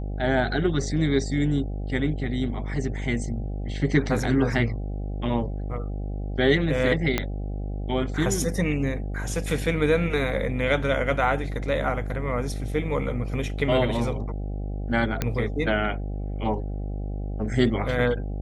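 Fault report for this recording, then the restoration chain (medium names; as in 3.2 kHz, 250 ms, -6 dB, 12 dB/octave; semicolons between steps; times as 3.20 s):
buzz 50 Hz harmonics 16 -30 dBFS
7.18 s: pop -8 dBFS
15.22 s: pop -10 dBFS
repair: de-click; de-hum 50 Hz, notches 16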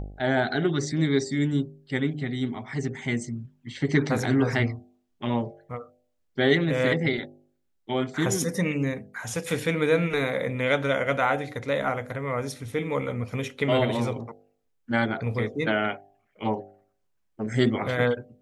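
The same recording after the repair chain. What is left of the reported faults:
7.18 s: pop
15.22 s: pop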